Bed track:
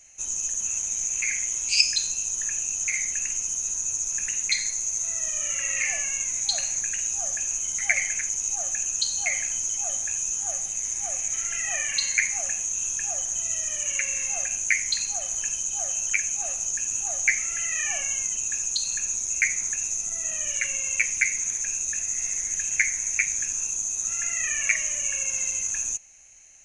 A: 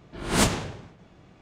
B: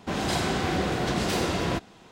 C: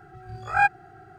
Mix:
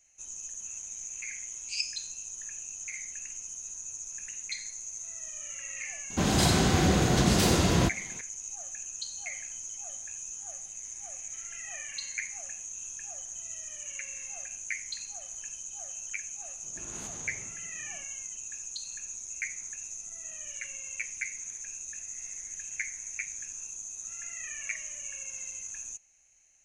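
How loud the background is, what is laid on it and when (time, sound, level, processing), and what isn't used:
bed track −12.5 dB
0:06.10: mix in B −0.5 dB + bass and treble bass +7 dB, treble +7 dB
0:16.63: mix in A −7 dB + downward compressor 4 to 1, threshold −39 dBFS
not used: C

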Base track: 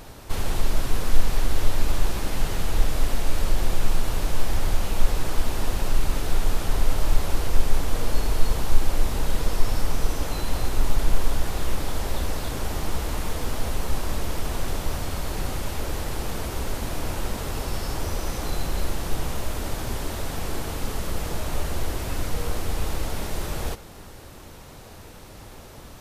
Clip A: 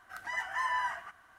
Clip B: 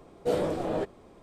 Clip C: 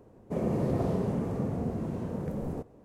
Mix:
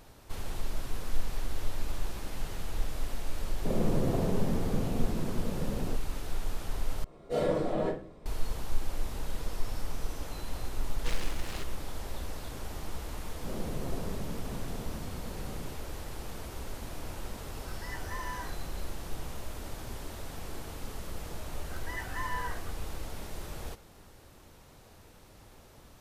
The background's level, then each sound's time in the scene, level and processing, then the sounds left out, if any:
base track −11.5 dB
0:03.34: mix in C −1.5 dB
0:07.04: overwrite with B −14 dB + rectangular room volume 33 cubic metres, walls mixed, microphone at 2.3 metres
0:10.79: mix in B −14.5 dB + short delay modulated by noise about 2,000 Hz, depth 0.43 ms
0:13.13: mix in C −10.5 dB
0:17.55: mix in A −9 dB
0:21.60: mix in A −5 dB

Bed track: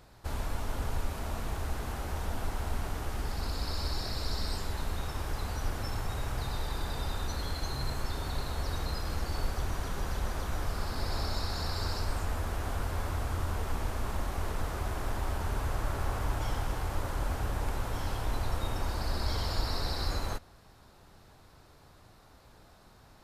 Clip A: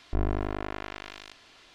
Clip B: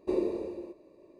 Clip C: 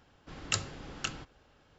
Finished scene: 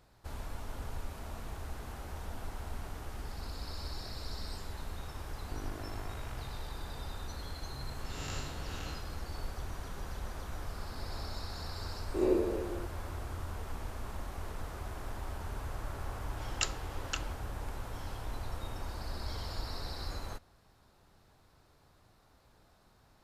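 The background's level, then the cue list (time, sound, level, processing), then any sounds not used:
bed track −7.5 dB
0:05.37: mix in A −14 dB
0:07.76: mix in C −0.5 dB + spectrum smeared in time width 273 ms
0:12.14: mix in B −1 dB + peak hold with a rise ahead of every peak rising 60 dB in 0.46 s
0:16.09: mix in C −2 dB + high-pass filter 310 Hz 24 dB per octave

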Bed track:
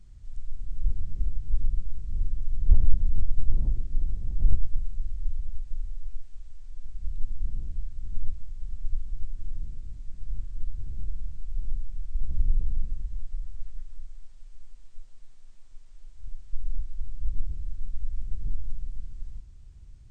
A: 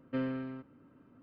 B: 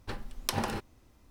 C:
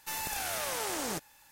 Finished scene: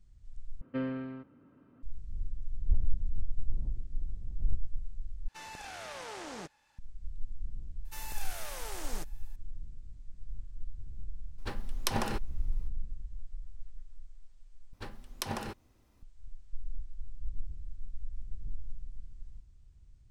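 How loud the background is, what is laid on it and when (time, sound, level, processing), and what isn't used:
bed track −9 dB
0:00.61: overwrite with A + high-frequency loss of the air 78 metres
0:05.28: overwrite with C −6.5 dB + high-frequency loss of the air 90 metres
0:07.85: mix in C −8.5 dB
0:11.38: mix in B −0.5 dB
0:14.73: overwrite with B −5 dB

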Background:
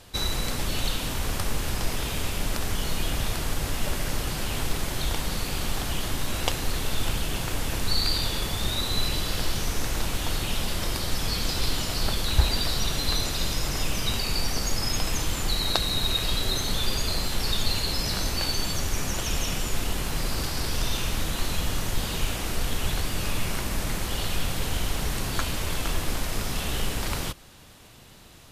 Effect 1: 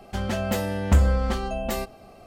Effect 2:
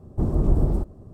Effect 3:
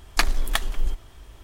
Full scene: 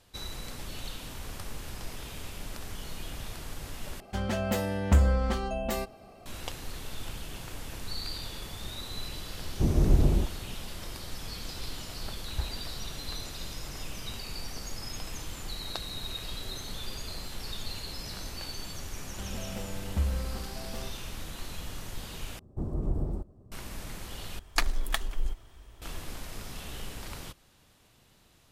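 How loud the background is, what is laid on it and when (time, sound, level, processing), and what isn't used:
background −12 dB
0:04.00: overwrite with 1 −3.5 dB
0:09.42: mix in 2 −2 dB + high-frequency loss of the air 430 metres
0:19.05: mix in 1 −16.5 dB + spectral tilt −1.5 dB per octave
0:22.39: overwrite with 2 −10.5 dB
0:24.39: overwrite with 3 −6 dB

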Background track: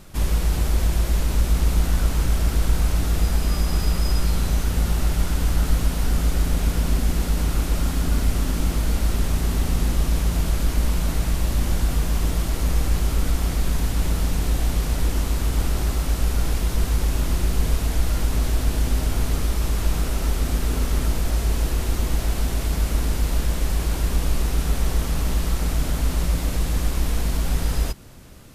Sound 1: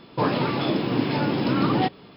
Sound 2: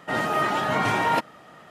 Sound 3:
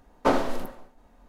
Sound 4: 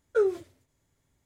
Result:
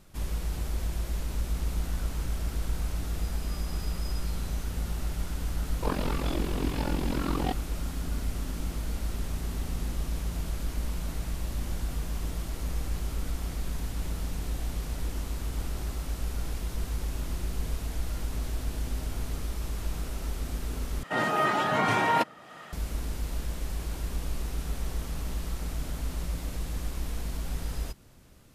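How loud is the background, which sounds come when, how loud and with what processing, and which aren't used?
background track −11 dB
0:05.65: mix in 1 −5.5 dB + amplitude modulation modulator 44 Hz, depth 85%
0:21.03: overwrite with 2 −2 dB + one half of a high-frequency compander encoder only
not used: 3, 4

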